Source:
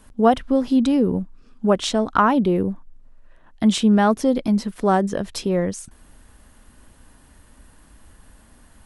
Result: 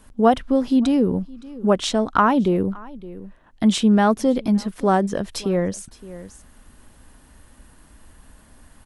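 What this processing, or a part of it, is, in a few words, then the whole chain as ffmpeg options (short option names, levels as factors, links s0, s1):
ducked delay: -filter_complex "[0:a]asplit=3[s0][s1][s2];[s1]adelay=566,volume=0.447[s3];[s2]apad=whole_len=415553[s4];[s3][s4]sidechaincompress=threshold=0.0178:ratio=8:attack=16:release=768[s5];[s0][s5]amix=inputs=2:normalize=0"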